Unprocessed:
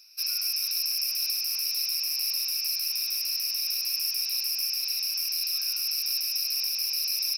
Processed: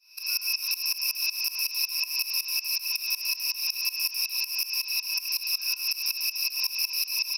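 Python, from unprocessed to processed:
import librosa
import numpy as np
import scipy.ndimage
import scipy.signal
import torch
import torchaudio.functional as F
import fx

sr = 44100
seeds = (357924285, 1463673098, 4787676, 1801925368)

y = fx.tremolo_shape(x, sr, shape='saw_up', hz=5.4, depth_pct=95)
y = fx.small_body(y, sr, hz=(1000.0, 2600.0), ring_ms=35, db=16)
y = y * 10.0 ** (3.5 / 20.0)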